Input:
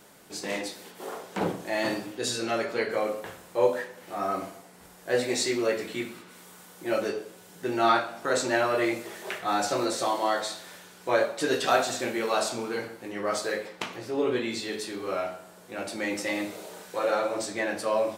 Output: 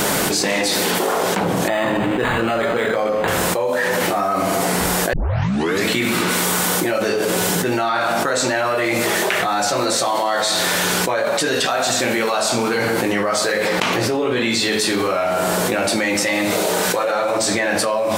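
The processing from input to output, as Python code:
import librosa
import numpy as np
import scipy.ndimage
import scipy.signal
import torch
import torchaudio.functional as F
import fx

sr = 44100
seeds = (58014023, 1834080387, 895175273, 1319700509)

y = fx.resample_linear(x, sr, factor=8, at=(1.68, 3.28))
y = fx.edit(y, sr, fx.tape_start(start_s=5.13, length_s=0.72), tone=tone)
y = fx.dynamic_eq(y, sr, hz=360.0, q=1.8, threshold_db=-41.0, ratio=4.0, max_db=-6)
y = fx.env_flatten(y, sr, amount_pct=100)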